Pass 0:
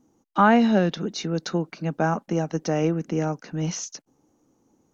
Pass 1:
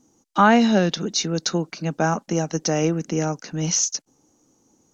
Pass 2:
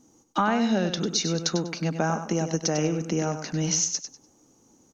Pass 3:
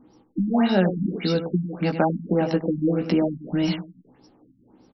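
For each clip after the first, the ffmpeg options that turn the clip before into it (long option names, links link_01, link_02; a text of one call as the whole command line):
ffmpeg -i in.wav -af "equalizer=frequency=6500:width_type=o:width=1.7:gain=11,volume=1.5dB" out.wav
ffmpeg -i in.wav -filter_complex "[0:a]acompressor=threshold=-25dB:ratio=3,asplit=2[link_01][link_02];[link_02]aecho=0:1:98|196|294:0.355|0.0887|0.0222[link_03];[link_01][link_03]amix=inputs=2:normalize=0,volume=1.5dB" out.wav
ffmpeg -i in.wav -filter_complex "[0:a]asplit=2[link_01][link_02];[link_02]adelay=16,volume=-4.5dB[link_03];[link_01][link_03]amix=inputs=2:normalize=0,afftfilt=real='re*lt(b*sr/1024,270*pow(5800/270,0.5+0.5*sin(2*PI*1.7*pts/sr)))':imag='im*lt(b*sr/1024,270*pow(5800/270,0.5+0.5*sin(2*PI*1.7*pts/sr)))':win_size=1024:overlap=0.75,volume=4.5dB" out.wav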